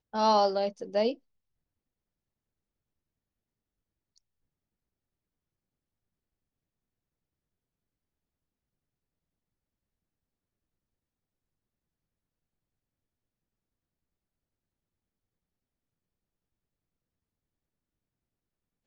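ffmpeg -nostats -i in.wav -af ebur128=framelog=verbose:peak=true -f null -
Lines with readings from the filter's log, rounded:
Integrated loudness:
  I:         -27.3 LUFS
  Threshold: -37.7 LUFS
Loudness range:
  LRA:        22.2 LU
  Threshold: -54.7 LUFS
  LRA low:   -53.5 LUFS
  LRA high:  -31.3 LUFS
True peak:
  Peak:      -13.1 dBFS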